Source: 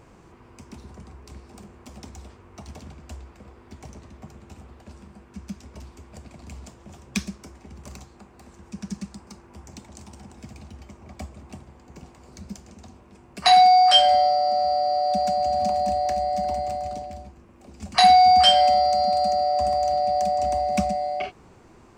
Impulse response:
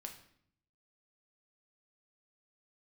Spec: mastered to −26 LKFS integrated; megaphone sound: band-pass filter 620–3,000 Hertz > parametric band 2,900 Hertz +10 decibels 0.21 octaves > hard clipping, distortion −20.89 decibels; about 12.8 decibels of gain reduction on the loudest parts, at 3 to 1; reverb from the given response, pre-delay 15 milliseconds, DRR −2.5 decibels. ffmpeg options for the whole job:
-filter_complex "[0:a]acompressor=threshold=-29dB:ratio=3,asplit=2[link_01][link_02];[1:a]atrim=start_sample=2205,adelay=15[link_03];[link_02][link_03]afir=irnorm=-1:irlink=0,volume=6.5dB[link_04];[link_01][link_04]amix=inputs=2:normalize=0,highpass=620,lowpass=3000,equalizer=frequency=2900:width_type=o:width=0.21:gain=10,asoftclip=type=hard:threshold=-21.5dB,volume=2.5dB"

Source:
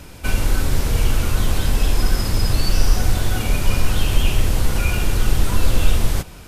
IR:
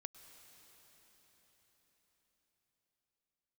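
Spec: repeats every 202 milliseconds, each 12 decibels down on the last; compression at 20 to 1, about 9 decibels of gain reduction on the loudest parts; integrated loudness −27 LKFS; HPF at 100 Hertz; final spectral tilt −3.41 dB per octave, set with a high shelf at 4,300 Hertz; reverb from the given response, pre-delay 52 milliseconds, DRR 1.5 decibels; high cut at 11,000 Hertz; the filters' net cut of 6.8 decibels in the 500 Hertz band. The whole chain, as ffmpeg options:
-filter_complex "[0:a]highpass=100,lowpass=11000,equalizer=frequency=500:width_type=o:gain=-9,highshelf=frequency=4300:gain=5.5,acompressor=threshold=-29dB:ratio=20,aecho=1:1:202|404|606:0.251|0.0628|0.0157,asplit=2[link_01][link_02];[1:a]atrim=start_sample=2205,adelay=52[link_03];[link_02][link_03]afir=irnorm=-1:irlink=0,volume=3.5dB[link_04];[link_01][link_04]amix=inputs=2:normalize=0,volume=3dB"

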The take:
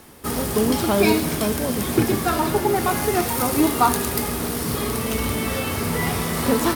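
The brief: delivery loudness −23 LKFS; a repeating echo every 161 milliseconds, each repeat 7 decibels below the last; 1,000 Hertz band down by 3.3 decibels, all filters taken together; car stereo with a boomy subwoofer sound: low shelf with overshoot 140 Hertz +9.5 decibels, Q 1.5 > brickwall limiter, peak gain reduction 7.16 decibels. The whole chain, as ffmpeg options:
ffmpeg -i in.wav -af "lowshelf=frequency=140:width_type=q:width=1.5:gain=9.5,equalizer=frequency=1000:width_type=o:gain=-4,aecho=1:1:161|322|483|644|805:0.447|0.201|0.0905|0.0407|0.0183,volume=-2dB,alimiter=limit=-12.5dB:level=0:latency=1" out.wav

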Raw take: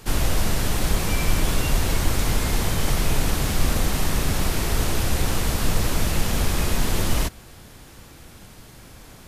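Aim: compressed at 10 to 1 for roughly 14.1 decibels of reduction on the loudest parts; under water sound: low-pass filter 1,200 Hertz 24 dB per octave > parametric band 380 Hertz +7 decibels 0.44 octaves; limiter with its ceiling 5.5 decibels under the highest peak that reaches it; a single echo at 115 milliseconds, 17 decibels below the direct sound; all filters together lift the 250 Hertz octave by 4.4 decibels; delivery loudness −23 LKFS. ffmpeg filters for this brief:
ffmpeg -i in.wav -af "equalizer=frequency=250:width_type=o:gain=4,acompressor=threshold=-28dB:ratio=10,alimiter=limit=-24dB:level=0:latency=1,lowpass=frequency=1200:width=0.5412,lowpass=frequency=1200:width=1.3066,equalizer=frequency=380:width_type=o:width=0.44:gain=7,aecho=1:1:115:0.141,volume=15dB" out.wav

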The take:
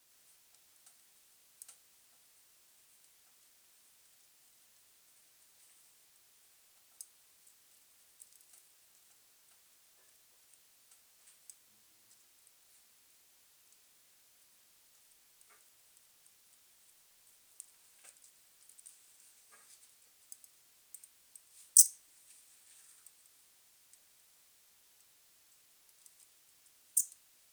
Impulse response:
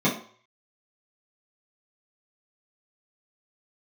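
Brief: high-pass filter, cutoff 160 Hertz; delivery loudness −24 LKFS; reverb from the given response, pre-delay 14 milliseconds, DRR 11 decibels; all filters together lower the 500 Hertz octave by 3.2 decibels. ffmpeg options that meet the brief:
-filter_complex "[0:a]highpass=160,equalizer=frequency=500:width_type=o:gain=-4,asplit=2[link_01][link_02];[1:a]atrim=start_sample=2205,adelay=14[link_03];[link_02][link_03]afir=irnorm=-1:irlink=0,volume=-26dB[link_04];[link_01][link_04]amix=inputs=2:normalize=0,volume=3dB"

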